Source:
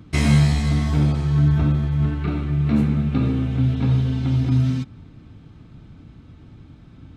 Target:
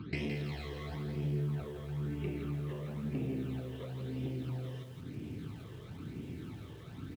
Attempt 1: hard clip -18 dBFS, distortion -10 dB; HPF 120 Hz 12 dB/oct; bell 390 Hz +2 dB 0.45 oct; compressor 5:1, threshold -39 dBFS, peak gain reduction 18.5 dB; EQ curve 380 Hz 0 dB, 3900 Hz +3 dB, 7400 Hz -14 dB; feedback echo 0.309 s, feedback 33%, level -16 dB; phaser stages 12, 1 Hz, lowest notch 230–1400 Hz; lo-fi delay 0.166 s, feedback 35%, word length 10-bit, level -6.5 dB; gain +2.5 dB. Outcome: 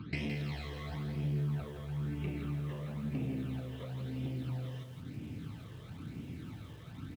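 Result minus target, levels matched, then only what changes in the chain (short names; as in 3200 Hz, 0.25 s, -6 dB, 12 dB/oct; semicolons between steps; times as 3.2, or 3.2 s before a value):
500 Hz band -4.0 dB
change: bell 390 Hz +10 dB 0.45 oct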